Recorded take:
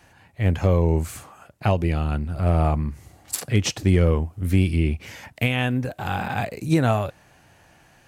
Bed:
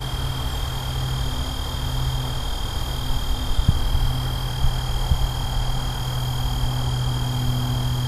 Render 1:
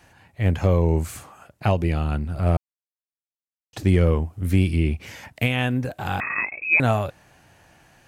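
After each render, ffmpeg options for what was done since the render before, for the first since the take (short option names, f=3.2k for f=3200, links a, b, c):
-filter_complex "[0:a]asettb=1/sr,asplit=3[a][b][c];[a]atrim=end=6.204[d];[b]atrim=start=6.2:end=6.8,asetpts=PTS-STARTPTS,afade=t=in:d=0.004:c=qsin,afade=t=out:st=0.596:d=0.004:c=qsin,lowpass=f=2.3k:t=q:w=0.5098,lowpass=f=2.3k:t=q:w=0.6013,lowpass=f=2.3k:t=q:w=0.9,lowpass=f=2.3k:t=q:w=2.563,afreqshift=-2700[e];[c]atrim=start=6.796[f];[d][e]acrossfade=d=0.004:c1=hsin:c2=qsin[g];[g][f]acrossfade=d=0.004:c1=qsin:c2=hsin,asplit=3[h][i][j];[h]atrim=end=2.57,asetpts=PTS-STARTPTS,afade=t=out:st=2.566:d=0.004:c=hsin[k];[i]atrim=start=2.57:end=3.73,asetpts=PTS-STARTPTS,volume=0[l];[j]atrim=start=3.73,asetpts=PTS-STARTPTS,afade=t=in:d=0.004:c=hsin[m];[k][l][m]concat=n=3:v=0:a=1"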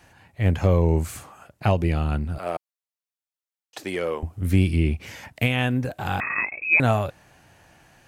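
-filter_complex "[0:a]asettb=1/sr,asplit=3[a][b][c];[a]atrim=end=2.384[d];[b]atrim=start=2.38:end=4.23,asetpts=PTS-STARTPTS,afade=t=in:d=0.004:c=qsin,afade=t=out:st=1.846:d=0.004:c=qsin,highpass=480[e];[c]atrim=start=4.226[f];[d][e]acrossfade=d=0.004:c1=hsin:c2=qsin[g];[g][f]acrossfade=d=0.004:c1=qsin:c2=hsin"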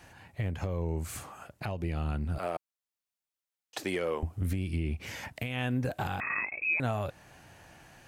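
-af "acompressor=threshold=-23dB:ratio=4,alimiter=limit=-21dB:level=0:latency=1:release=445"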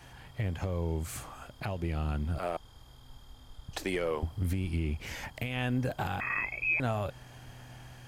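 -filter_complex "[1:a]volume=-28dB[a];[0:a][a]amix=inputs=2:normalize=0"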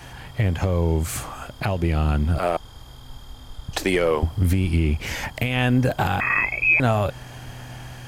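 -af "volume=11.5dB"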